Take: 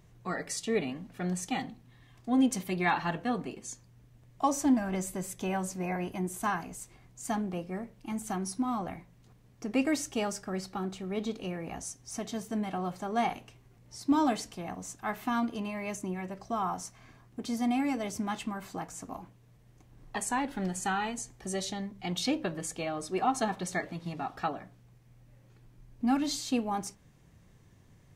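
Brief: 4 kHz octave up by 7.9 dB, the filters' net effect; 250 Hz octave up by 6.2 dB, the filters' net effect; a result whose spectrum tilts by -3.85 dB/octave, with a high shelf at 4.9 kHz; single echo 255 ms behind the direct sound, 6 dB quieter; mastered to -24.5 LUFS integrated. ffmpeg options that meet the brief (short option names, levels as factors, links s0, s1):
-af "equalizer=f=250:t=o:g=7,equalizer=f=4000:t=o:g=5.5,highshelf=f=4900:g=9,aecho=1:1:255:0.501,volume=1.41"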